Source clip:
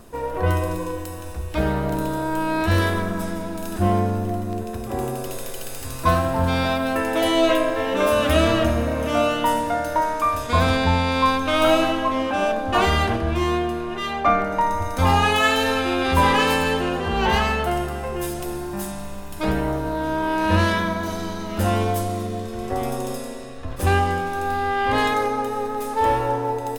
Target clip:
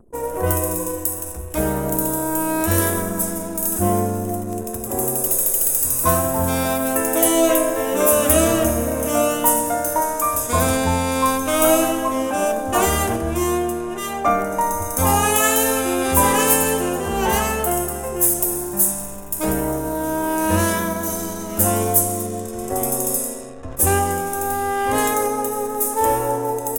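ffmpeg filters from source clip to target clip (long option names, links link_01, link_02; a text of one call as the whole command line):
ffmpeg -i in.wav -af "anlmdn=0.251,equalizer=frequency=420:width_type=o:width=2.7:gain=6,aexciter=amount=11.5:drive=5.7:freq=6300,volume=-3.5dB" out.wav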